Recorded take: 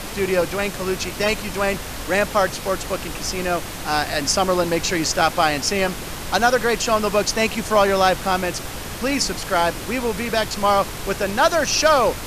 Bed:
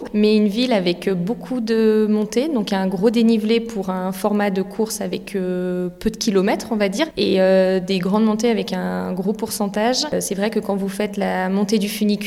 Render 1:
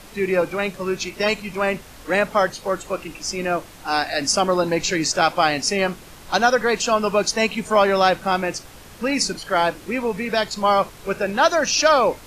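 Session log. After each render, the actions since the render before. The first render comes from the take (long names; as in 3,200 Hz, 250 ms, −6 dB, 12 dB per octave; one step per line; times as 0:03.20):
noise reduction from a noise print 12 dB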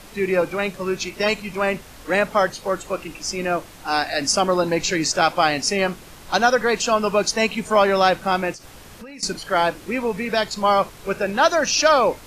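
0:08.52–0:09.23: downward compressor 12 to 1, threshold −35 dBFS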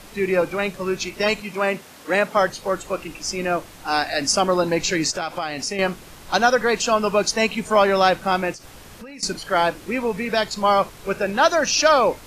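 0:01.41–0:02.37: high-pass filter 160 Hz
0:05.10–0:05.79: downward compressor 4 to 1, threshold −23 dBFS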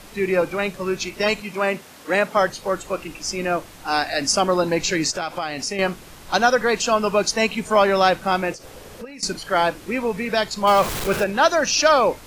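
0:08.51–0:09.05: parametric band 490 Hz +10 dB
0:10.67–0:11.24: converter with a step at zero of −22 dBFS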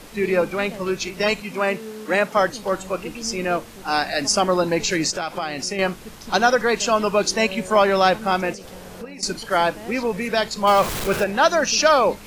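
mix in bed −20 dB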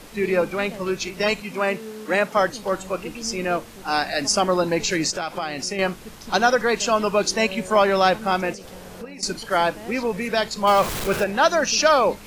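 level −1 dB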